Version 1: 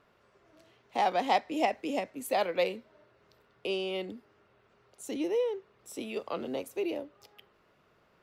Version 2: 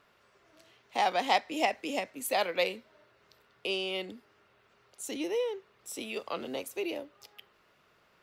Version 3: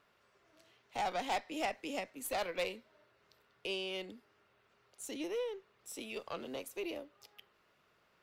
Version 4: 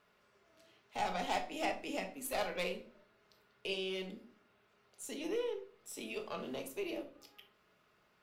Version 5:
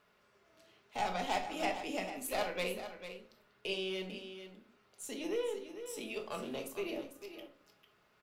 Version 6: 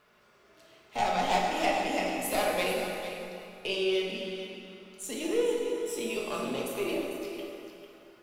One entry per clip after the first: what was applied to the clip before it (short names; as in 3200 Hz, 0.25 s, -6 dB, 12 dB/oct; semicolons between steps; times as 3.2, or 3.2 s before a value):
tilt shelf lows -4.5 dB, about 1100 Hz; gain +1 dB
tube stage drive 24 dB, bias 0.35; gain -4.5 dB
shoebox room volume 440 m³, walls furnished, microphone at 1.4 m; gain -1.5 dB
echo 0.447 s -10.5 dB; gain +1 dB
plate-style reverb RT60 2.7 s, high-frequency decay 0.8×, DRR 0 dB; gain +5 dB